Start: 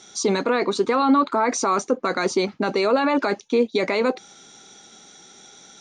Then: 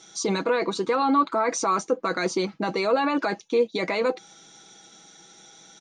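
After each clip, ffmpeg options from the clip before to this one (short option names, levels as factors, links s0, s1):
-af "aecho=1:1:6.1:0.5,volume=0.631"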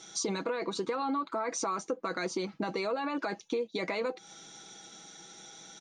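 -af "acompressor=threshold=0.0316:ratio=6"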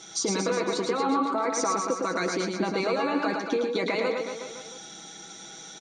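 -af "aecho=1:1:110|231|364.1|510.5|671.6:0.631|0.398|0.251|0.158|0.1,volume=1.68"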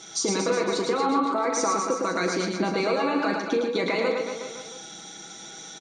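-filter_complex "[0:a]asplit=2[s0][s1];[s1]adelay=39,volume=0.335[s2];[s0][s2]amix=inputs=2:normalize=0,volume=1.19"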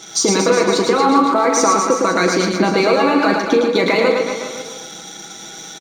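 -filter_complex "[0:a]asplit=2[s0][s1];[s1]aeval=exprs='sgn(val(0))*max(abs(val(0))-0.00891,0)':c=same,volume=0.668[s2];[s0][s2]amix=inputs=2:normalize=0,aecho=1:1:404:0.158,volume=2"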